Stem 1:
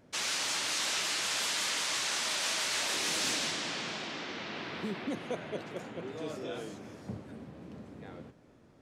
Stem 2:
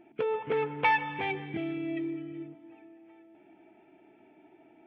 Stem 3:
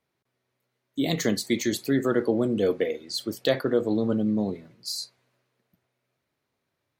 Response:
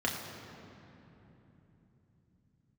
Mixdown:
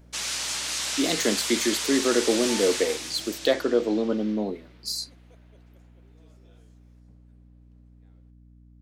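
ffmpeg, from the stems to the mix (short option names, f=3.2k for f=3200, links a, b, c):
-filter_complex "[0:a]highshelf=f=4.3k:g=8,volume=-1dB,afade=t=out:st=2.66:d=0.49:silence=0.298538,afade=t=out:st=4.29:d=0.22:silence=0.251189[a];[1:a]adelay=1650,volume=-15.5dB[b];[2:a]highpass=f=230:w=0.5412,highpass=f=230:w=1.3066,volume=1.5dB[c];[a][b][c]amix=inputs=3:normalize=0,aeval=exprs='val(0)+0.00282*(sin(2*PI*60*n/s)+sin(2*PI*2*60*n/s)/2+sin(2*PI*3*60*n/s)/3+sin(2*PI*4*60*n/s)/4+sin(2*PI*5*60*n/s)/5)':c=same"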